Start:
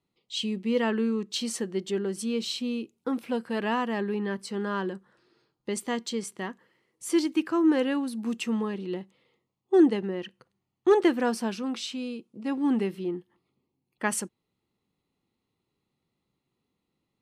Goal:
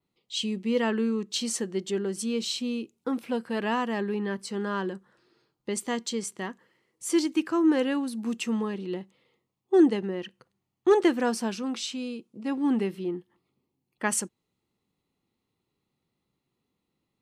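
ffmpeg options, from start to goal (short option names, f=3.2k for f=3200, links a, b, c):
-af "adynamicequalizer=threshold=0.00355:dfrequency=7000:dqfactor=1.4:tfrequency=7000:tqfactor=1.4:attack=5:release=100:ratio=0.375:range=2.5:mode=boostabove:tftype=bell"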